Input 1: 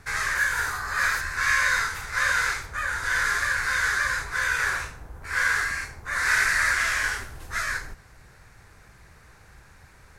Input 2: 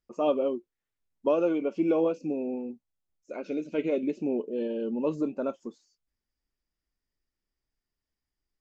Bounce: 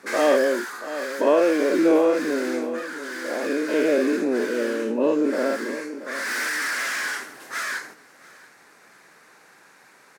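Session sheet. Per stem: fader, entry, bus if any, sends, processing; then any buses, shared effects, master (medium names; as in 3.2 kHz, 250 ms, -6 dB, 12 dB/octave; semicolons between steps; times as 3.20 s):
+2.5 dB, 0.00 s, no send, echo send -22.5 dB, overload inside the chain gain 27 dB; auto duck -8 dB, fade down 0.90 s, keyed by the second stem
+3.0 dB, 0.00 s, no send, echo send -12.5 dB, every event in the spectrogram widened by 120 ms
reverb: none
echo: feedback delay 683 ms, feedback 32%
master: high-pass 230 Hz 24 dB/octave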